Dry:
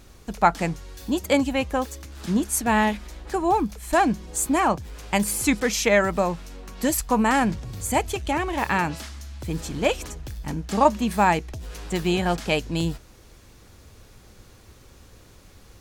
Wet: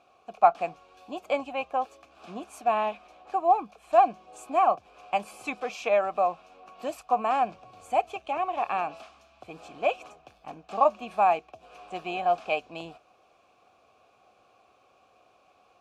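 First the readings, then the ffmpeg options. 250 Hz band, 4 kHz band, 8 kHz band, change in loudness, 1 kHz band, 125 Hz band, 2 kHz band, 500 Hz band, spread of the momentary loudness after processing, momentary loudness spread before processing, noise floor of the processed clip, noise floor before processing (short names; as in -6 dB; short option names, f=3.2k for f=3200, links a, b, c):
-17.5 dB, -12.0 dB, under -20 dB, -4.0 dB, -0.5 dB, under -20 dB, -10.0 dB, -3.0 dB, 19 LU, 15 LU, -63 dBFS, -51 dBFS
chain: -filter_complex "[0:a]asplit=3[a][b][c];[a]bandpass=f=730:t=q:w=8,volume=0dB[d];[b]bandpass=f=1.09k:t=q:w=8,volume=-6dB[e];[c]bandpass=f=2.44k:t=q:w=8,volume=-9dB[f];[d][e][f]amix=inputs=3:normalize=0,lowshelf=f=74:g=-8,volume=6dB" -ar 32000 -c:a aac -b:a 64k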